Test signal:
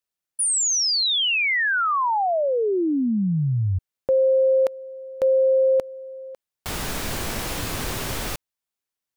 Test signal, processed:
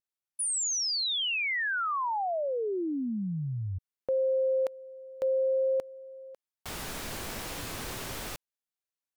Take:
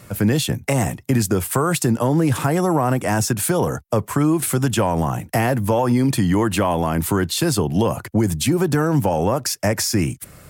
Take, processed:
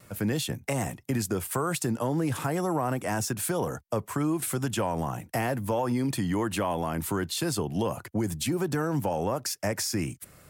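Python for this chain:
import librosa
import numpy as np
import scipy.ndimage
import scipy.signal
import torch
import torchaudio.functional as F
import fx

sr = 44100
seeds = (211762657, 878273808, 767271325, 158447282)

y = fx.low_shelf(x, sr, hz=190.0, db=-4.0)
y = fx.vibrato(y, sr, rate_hz=0.37, depth_cents=7.2)
y = y * 10.0 ** (-8.5 / 20.0)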